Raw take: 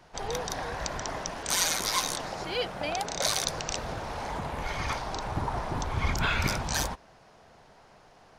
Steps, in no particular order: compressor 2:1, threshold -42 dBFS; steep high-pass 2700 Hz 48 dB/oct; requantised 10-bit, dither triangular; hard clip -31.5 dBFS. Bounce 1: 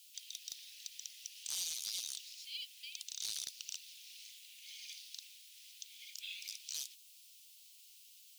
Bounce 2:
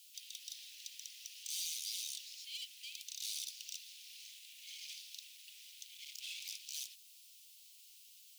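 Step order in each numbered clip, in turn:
compressor > requantised > steep high-pass > hard clip; hard clip > compressor > requantised > steep high-pass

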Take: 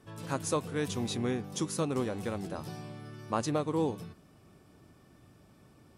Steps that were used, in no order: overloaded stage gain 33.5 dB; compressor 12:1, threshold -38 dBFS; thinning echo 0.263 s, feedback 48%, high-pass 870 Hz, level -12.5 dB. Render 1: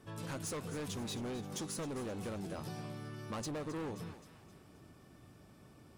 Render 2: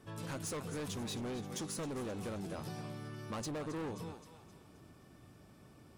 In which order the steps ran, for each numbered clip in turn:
overloaded stage > thinning echo > compressor; thinning echo > overloaded stage > compressor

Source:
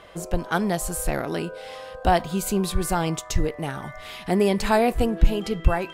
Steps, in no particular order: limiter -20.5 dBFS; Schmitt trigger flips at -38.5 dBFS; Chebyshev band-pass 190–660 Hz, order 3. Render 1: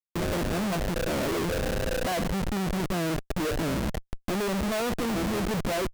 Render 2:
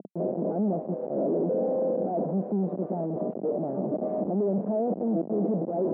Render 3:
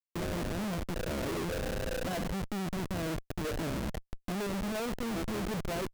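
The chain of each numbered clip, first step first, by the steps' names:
Chebyshev band-pass > Schmitt trigger > limiter; Schmitt trigger > limiter > Chebyshev band-pass; limiter > Chebyshev band-pass > Schmitt trigger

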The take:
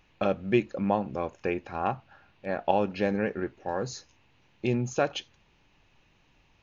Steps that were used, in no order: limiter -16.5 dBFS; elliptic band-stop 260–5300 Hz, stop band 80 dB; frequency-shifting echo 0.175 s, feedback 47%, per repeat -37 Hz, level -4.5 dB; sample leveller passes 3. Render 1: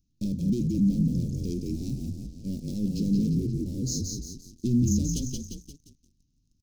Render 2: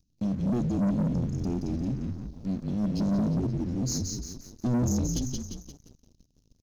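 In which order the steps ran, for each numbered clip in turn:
limiter > frequency-shifting echo > sample leveller > elliptic band-stop; limiter > frequency-shifting echo > elliptic band-stop > sample leveller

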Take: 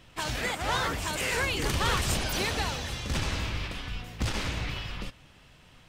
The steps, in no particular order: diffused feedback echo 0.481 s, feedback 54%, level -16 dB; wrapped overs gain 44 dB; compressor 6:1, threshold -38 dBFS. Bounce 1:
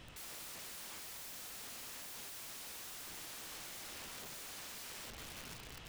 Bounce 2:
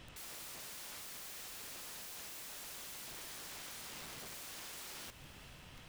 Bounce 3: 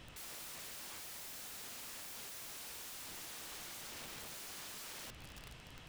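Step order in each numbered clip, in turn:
diffused feedback echo > compressor > wrapped overs; compressor > wrapped overs > diffused feedback echo; compressor > diffused feedback echo > wrapped overs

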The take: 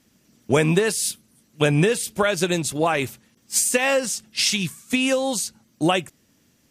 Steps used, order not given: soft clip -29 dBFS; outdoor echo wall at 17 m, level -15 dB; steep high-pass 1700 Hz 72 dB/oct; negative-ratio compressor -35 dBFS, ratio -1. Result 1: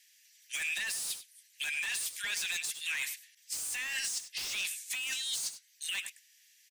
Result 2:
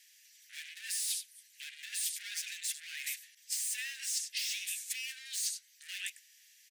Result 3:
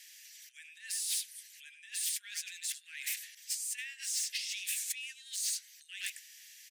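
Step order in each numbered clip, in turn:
steep high-pass > soft clip > outdoor echo > negative-ratio compressor; outdoor echo > soft clip > negative-ratio compressor > steep high-pass; outdoor echo > negative-ratio compressor > soft clip > steep high-pass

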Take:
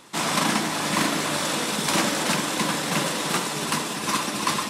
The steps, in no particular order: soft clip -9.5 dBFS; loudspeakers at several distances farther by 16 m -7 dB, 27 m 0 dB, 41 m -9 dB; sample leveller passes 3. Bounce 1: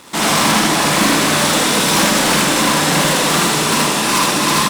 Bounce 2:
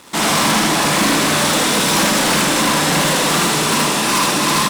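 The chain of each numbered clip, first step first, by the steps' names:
soft clip > sample leveller > loudspeakers at several distances; sample leveller > loudspeakers at several distances > soft clip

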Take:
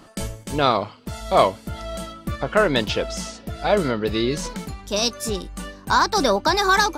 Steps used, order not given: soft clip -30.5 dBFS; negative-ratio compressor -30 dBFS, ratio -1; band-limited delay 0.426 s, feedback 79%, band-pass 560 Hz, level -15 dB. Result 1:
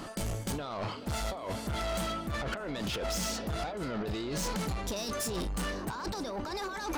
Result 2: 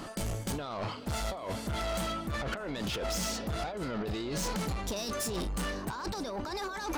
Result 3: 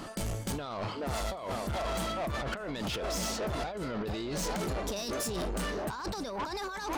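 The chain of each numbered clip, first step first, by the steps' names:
negative-ratio compressor > band-limited delay > soft clip; negative-ratio compressor > soft clip > band-limited delay; band-limited delay > negative-ratio compressor > soft clip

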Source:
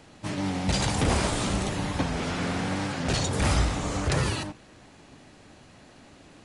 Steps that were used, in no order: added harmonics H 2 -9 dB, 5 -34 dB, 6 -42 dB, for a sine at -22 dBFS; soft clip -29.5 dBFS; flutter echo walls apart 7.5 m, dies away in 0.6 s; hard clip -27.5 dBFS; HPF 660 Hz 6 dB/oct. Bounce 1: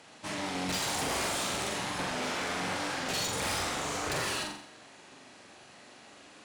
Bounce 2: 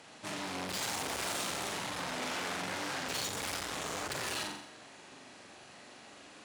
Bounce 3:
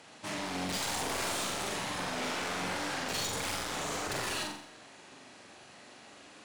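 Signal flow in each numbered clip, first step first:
HPF > soft clip > flutter echo > hard clip > added harmonics; hard clip > flutter echo > added harmonics > soft clip > HPF; hard clip > HPF > added harmonics > soft clip > flutter echo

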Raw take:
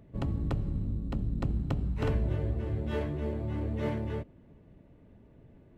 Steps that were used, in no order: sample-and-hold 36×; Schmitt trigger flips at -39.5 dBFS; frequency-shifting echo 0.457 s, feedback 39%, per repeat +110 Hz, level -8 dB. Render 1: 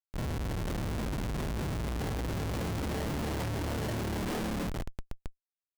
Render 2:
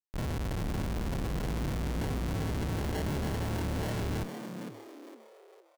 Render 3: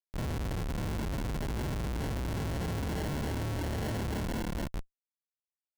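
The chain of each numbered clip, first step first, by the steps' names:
sample-and-hold > frequency-shifting echo > Schmitt trigger; sample-and-hold > Schmitt trigger > frequency-shifting echo; frequency-shifting echo > sample-and-hold > Schmitt trigger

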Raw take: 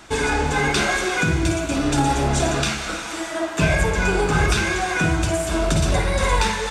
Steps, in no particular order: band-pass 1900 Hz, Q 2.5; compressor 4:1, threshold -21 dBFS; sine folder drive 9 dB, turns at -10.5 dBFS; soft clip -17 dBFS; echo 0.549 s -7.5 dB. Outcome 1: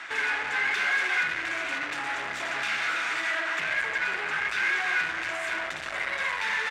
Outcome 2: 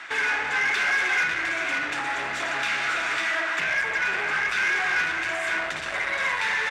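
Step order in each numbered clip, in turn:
compressor > sine folder > echo > soft clip > band-pass; echo > compressor > sine folder > band-pass > soft clip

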